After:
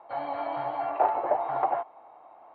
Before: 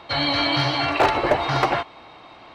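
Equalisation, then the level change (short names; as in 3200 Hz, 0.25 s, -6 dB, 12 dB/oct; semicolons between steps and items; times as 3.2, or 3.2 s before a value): band-pass 760 Hz, Q 3; air absorption 430 m; 0.0 dB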